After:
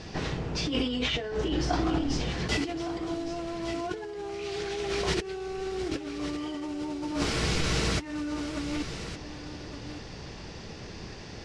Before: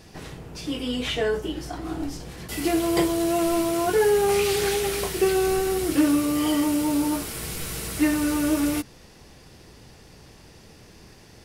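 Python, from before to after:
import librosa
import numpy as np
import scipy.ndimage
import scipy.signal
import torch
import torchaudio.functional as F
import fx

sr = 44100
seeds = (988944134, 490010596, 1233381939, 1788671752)

p1 = scipy.signal.sosfilt(scipy.signal.butter(4, 6100.0, 'lowpass', fs=sr, output='sos'), x)
p2 = fx.over_compress(p1, sr, threshold_db=-32.0, ratio=-1.0)
y = p2 + fx.echo_single(p2, sr, ms=1163, db=-11.5, dry=0)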